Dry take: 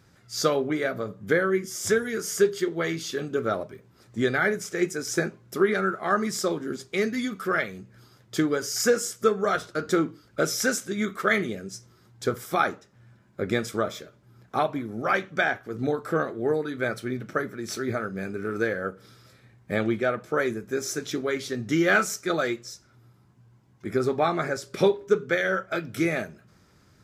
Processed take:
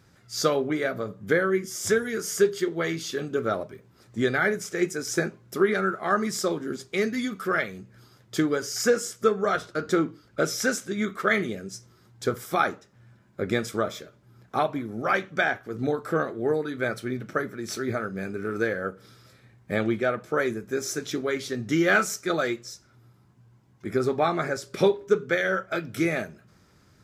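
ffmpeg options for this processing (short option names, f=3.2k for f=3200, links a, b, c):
-filter_complex "[0:a]asettb=1/sr,asplit=3[a][b][c];[a]atrim=end=8.614[d];[b]atrim=start=8.61:end=11.38,asetpts=PTS-STARTPTS,afade=t=in:d=0.004:c=qsin,afade=t=out:st=2.766:d=0.004:c=qsin,highshelf=f=7k:g=-5[e];[c]atrim=start=11.376[f];[d][e]acrossfade=d=0.004:c1=hsin:c2=qsin[g];[g][f]acrossfade=d=0.004:c1=qsin:c2=hsin"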